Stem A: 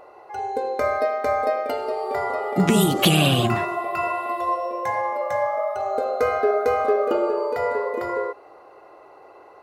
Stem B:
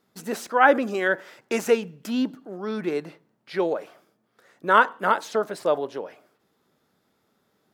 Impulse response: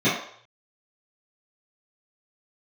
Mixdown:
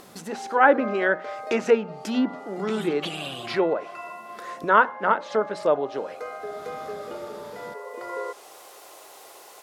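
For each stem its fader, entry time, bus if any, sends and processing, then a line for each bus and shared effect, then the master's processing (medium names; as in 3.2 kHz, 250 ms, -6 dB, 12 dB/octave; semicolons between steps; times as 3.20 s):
-6.0 dB, 0.00 s, no send, word length cut 8-bit, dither triangular; high-pass 490 Hz 6 dB/octave; auto duck -12 dB, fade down 1.50 s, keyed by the second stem
-4.5 dB, 0.00 s, no send, hum notches 60/120/180/240 Hz; upward compressor, threshold -28 dBFS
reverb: none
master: low-pass that closes with the level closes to 2.3 kHz, closed at -23.5 dBFS; level rider gain up to 6 dB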